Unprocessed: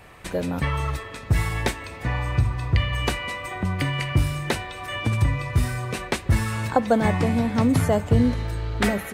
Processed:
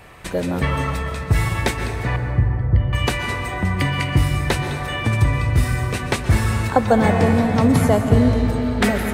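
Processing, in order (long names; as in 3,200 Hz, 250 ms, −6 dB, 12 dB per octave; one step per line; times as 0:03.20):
0:02.16–0:02.93: moving average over 35 samples
dense smooth reverb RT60 3.2 s, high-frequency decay 0.3×, pre-delay 110 ms, DRR 5 dB
level +3.5 dB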